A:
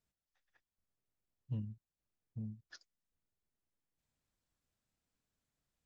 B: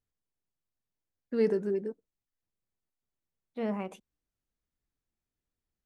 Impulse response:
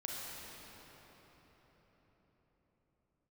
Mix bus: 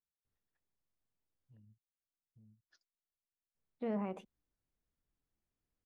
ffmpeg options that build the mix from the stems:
-filter_complex "[0:a]alimiter=level_in=16.5dB:limit=-24dB:level=0:latency=1,volume=-16.5dB,volume=-16.5dB[link_01];[1:a]lowpass=frequency=1600:poles=1,adelay=250,volume=0.5dB,asplit=3[link_02][link_03][link_04];[link_02]atrim=end=1.57,asetpts=PTS-STARTPTS,afade=type=out:start_time=1.566:duration=0.004:curve=hsin[link_05];[link_03]atrim=start=1.57:end=3.55,asetpts=PTS-STARTPTS,volume=0[link_06];[link_04]atrim=start=3.55,asetpts=PTS-STARTPTS,afade=type=in:duration=0.004:curve=hsin[link_07];[link_05][link_06][link_07]concat=n=3:v=0:a=1[link_08];[link_01][link_08]amix=inputs=2:normalize=0,alimiter=level_in=6dB:limit=-24dB:level=0:latency=1:release=39,volume=-6dB"

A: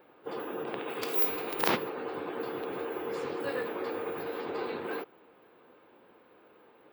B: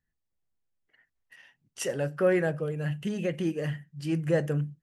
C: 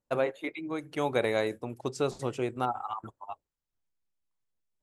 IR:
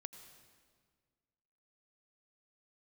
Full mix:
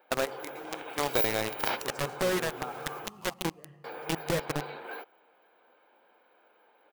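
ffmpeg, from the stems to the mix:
-filter_complex "[0:a]highpass=420,aecho=1:1:1.3:0.41,volume=-3dB,asplit=3[link_01][link_02][link_03];[link_01]atrim=end=3.08,asetpts=PTS-STARTPTS,afade=type=out:start_time=3.076:duration=0.004:curve=hsin[link_04];[link_02]atrim=start=3.08:end=3.84,asetpts=PTS-STARTPTS,volume=0[link_05];[link_03]atrim=start=3.84,asetpts=PTS-STARTPTS,afade=type=in:duration=0.004:curve=hsin[link_06];[link_04][link_05][link_06]concat=n=3:v=0:a=1[link_07];[1:a]volume=-0.5dB,asplit=3[link_08][link_09][link_10];[link_09]volume=-17dB[link_11];[2:a]equalizer=frequency=1200:width_type=o:width=0.35:gain=4.5,acrusher=bits=6:mix=0:aa=0.000001,volume=0dB,asplit=2[link_12][link_13];[link_13]volume=-6.5dB[link_14];[link_10]apad=whole_len=212596[link_15];[link_12][link_15]sidechaincompress=threshold=-47dB:ratio=5:attack=8.7:release=661[link_16];[link_08][link_16]amix=inputs=2:normalize=0,acrusher=bits=3:mix=0:aa=0.000001,acompressor=threshold=-26dB:ratio=6,volume=0dB[link_17];[3:a]atrim=start_sample=2205[link_18];[link_11][link_14]amix=inputs=2:normalize=0[link_19];[link_19][link_18]afir=irnorm=-1:irlink=0[link_20];[link_07][link_17][link_20]amix=inputs=3:normalize=0"

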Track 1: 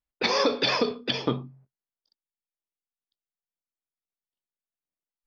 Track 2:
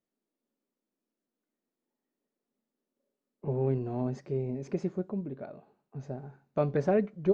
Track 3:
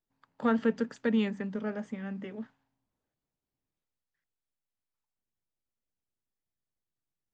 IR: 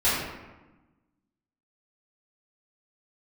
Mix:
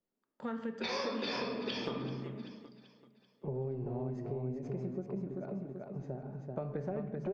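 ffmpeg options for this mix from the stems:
-filter_complex "[0:a]acompressor=threshold=-29dB:ratio=2,adelay=600,volume=-3dB,asplit=3[link_01][link_02][link_03];[link_02]volume=-13.5dB[link_04];[link_03]volume=-16.5dB[link_05];[1:a]acrossover=split=140[link_06][link_07];[link_07]acompressor=threshold=-28dB:ratio=6[link_08];[link_06][link_08]amix=inputs=2:normalize=0,highshelf=frequency=2600:gain=-10,volume=-1dB,asplit=3[link_09][link_10][link_11];[link_10]volume=-22.5dB[link_12];[link_11]volume=-4dB[link_13];[2:a]agate=range=-15dB:threshold=-55dB:ratio=16:detection=peak,volume=-8.5dB,asplit=4[link_14][link_15][link_16][link_17];[link_15]volume=-21.5dB[link_18];[link_16]volume=-14.5dB[link_19];[link_17]apad=whole_len=258675[link_20];[link_01][link_20]sidechaincompress=threshold=-36dB:ratio=8:attack=16:release=390[link_21];[3:a]atrim=start_sample=2205[link_22];[link_04][link_12][link_18]amix=inputs=3:normalize=0[link_23];[link_23][link_22]afir=irnorm=-1:irlink=0[link_24];[link_05][link_13][link_19]amix=inputs=3:normalize=0,aecho=0:1:386|772|1158|1544|1930|2316:1|0.43|0.185|0.0795|0.0342|0.0147[link_25];[link_21][link_09][link_14][link_24][link_25]amix=inputs=5:normalize=0,acompressor=threshold=-37dB:ratio=2.5"

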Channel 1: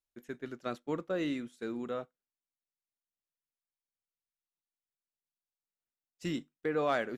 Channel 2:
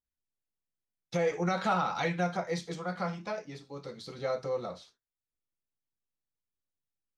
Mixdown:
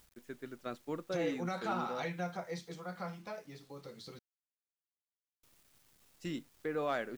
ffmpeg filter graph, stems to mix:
ffmpeg -i stem1.wav -i stem2.wav -filter_complex "[0:a]volume=-4.5dB[link_01];[1:a]acompressor=mode=upward:threshold=-36dB:ratio=2.5,volume=-8dB,asplit=3[link_02][link_03][link_04];[link_02]atrim=end=4.19,asetpts=PTS-STARTPTS,afade=type=out:start_time=4.186:duration=0.004:curve=hsin[link_05];[link_03]atrim=start=4.19:end=5.43,asetpts=PTS-STARTPTS,volume=0[link_06];[link_04]atrim=start=5.43,asetpts=PTS-STARTPTS,afade=type=in:duration=0.004:curve=hsin[link_07];[link_05][link_06][link_07]concat=n=3:v=0:a=1[link_08];[link_01][link_08]amix=inputs=2:normalize=0,acrusher=bits=10:mix=0:aa=0.000001" out.wav

